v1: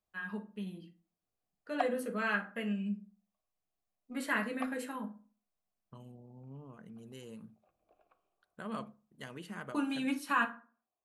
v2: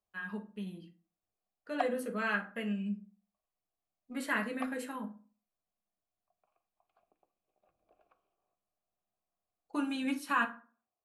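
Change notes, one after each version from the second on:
second voice: muted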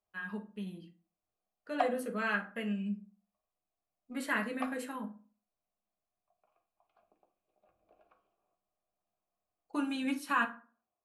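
background: send +9.0 dB

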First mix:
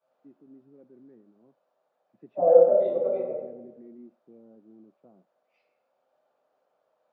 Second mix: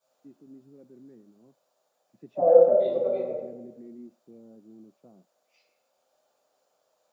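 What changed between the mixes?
first voice: add low shelf 180 Hz +8.5 dB; master: remove LPF 2100 Hz 12 dB/oct

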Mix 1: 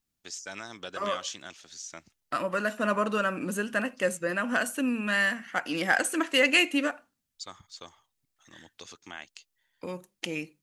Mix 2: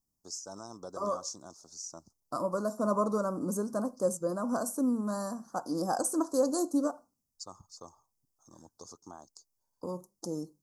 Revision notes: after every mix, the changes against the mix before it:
master: add elliptic band-stop 1100–5200 Hz, stop band 60 dB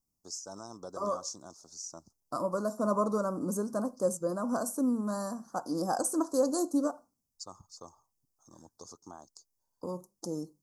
none

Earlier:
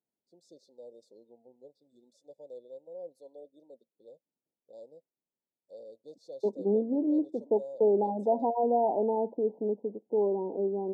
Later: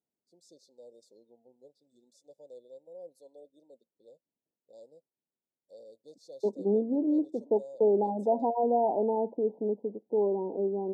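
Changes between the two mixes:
first voice -3.5 dB; master: add tone controls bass +1 dB, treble +10 dB

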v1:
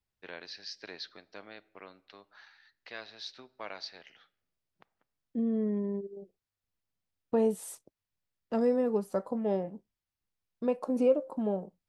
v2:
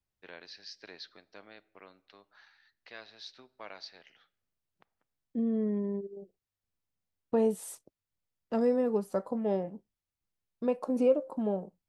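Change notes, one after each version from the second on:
first voice -4.0 dB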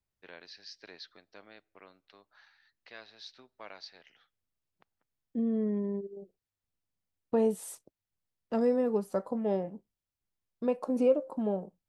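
first voice: send -10.0 dB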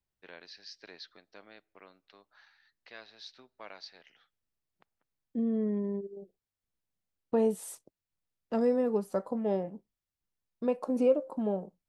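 master: add bell 94 Hz -4.5 dB 0.4 oct

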